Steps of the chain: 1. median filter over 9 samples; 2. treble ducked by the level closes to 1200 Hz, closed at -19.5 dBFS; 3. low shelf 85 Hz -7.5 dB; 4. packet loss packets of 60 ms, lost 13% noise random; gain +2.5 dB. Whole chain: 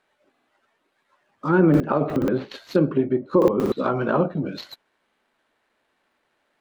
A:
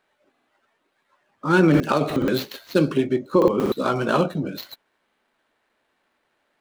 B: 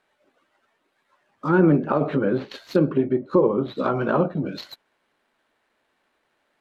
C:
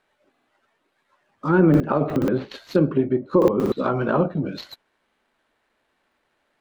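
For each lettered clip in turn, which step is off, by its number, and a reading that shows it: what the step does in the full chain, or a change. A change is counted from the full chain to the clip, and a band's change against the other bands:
2, 4 kHz band +7.0 dB; 4, momentary loudness spread change +1 LU; 3, 125 Hz band +1.5 dB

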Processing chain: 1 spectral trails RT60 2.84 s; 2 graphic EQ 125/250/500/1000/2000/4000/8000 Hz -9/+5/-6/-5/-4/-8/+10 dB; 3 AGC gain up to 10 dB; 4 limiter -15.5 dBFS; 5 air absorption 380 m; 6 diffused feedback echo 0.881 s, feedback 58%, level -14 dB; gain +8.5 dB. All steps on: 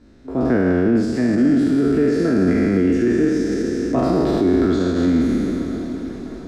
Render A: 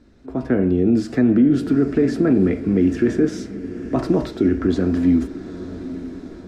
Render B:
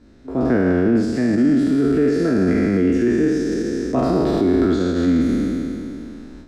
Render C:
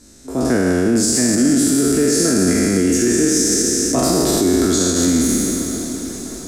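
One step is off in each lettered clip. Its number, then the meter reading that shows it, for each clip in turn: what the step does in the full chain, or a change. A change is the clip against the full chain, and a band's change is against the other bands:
1, 1 kHz band -4.0 dB; 6, echo-to-direct -12.0 dB to none; 5, 4 kHz band +14.0 dB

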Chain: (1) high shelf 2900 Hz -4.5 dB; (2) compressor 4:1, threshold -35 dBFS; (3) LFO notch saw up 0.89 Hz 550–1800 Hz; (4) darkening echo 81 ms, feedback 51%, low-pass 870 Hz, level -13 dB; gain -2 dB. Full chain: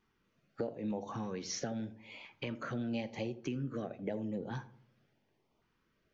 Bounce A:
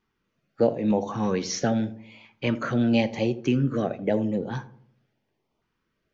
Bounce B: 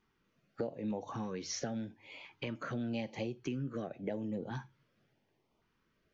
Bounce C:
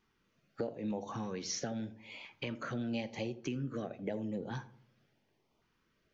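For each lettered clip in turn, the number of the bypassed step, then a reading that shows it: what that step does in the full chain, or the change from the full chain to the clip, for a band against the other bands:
2, mean gain reduction 12.0 dB; 4, echo-to-direct -17.5 dB to none; 1, 4 kHz band +2.0 dB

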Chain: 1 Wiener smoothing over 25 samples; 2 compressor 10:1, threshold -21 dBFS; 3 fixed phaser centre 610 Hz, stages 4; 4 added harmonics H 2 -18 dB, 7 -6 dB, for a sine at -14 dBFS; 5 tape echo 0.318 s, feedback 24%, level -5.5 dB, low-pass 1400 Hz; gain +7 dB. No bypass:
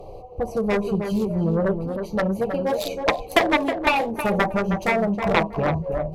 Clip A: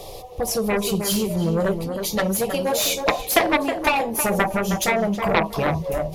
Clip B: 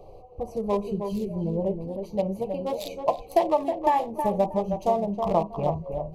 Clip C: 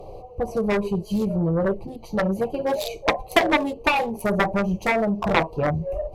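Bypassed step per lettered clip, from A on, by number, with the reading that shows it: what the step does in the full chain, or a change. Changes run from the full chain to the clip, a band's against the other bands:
1, 8 kHz band +16.5 dB; 4, 2 kHz band -15.0 dB; 5, echo-to-direct -15.0 dB to none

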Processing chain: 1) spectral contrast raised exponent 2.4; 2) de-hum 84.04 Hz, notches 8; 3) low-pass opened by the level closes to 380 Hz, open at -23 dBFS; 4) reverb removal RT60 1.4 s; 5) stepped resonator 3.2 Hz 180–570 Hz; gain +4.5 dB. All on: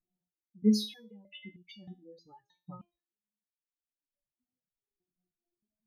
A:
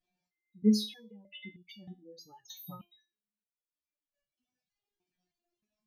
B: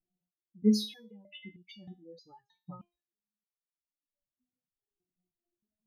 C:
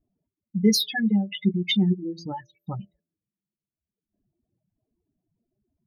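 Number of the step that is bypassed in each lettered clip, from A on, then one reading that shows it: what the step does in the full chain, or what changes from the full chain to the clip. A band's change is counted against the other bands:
3, 2 kHz band +1.5 dB; 2, 500 Hz band +1.5 dB; 5, 2 kHz band +8.0 dB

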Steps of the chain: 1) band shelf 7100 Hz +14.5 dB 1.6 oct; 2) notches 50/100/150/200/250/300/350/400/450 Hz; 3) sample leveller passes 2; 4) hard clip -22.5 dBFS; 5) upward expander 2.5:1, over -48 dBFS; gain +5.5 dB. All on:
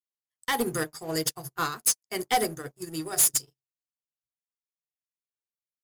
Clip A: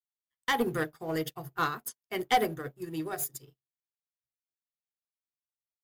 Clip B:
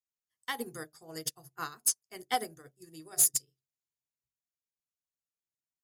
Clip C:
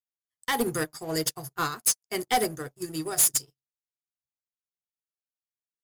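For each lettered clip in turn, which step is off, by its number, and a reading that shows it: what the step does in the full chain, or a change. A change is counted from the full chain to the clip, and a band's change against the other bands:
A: 1, 8 kHz band -16.0 dB; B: 3, crest factor change +6.0 dB; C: 2, momentary loudness spread change -2 LU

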